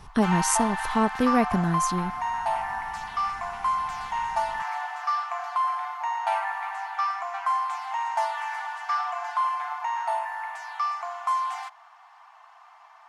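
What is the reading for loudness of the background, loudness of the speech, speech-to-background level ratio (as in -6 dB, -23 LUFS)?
-28.5 LUFS, -25.5 LUFS, 3.0 dB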